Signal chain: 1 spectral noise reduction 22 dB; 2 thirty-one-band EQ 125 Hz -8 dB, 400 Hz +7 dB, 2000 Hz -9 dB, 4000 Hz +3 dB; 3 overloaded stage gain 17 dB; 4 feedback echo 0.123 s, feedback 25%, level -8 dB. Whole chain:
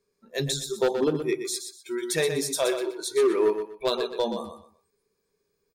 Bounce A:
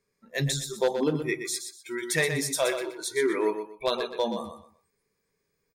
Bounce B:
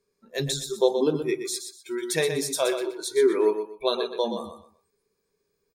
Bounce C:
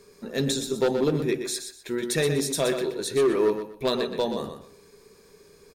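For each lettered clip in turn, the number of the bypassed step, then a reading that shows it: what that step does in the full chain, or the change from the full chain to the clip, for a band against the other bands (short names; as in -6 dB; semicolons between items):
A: 2, 2 kHz band +5.5 dB; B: 3, distortion -15 dB; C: 1, 125 Hz band +4.5 dB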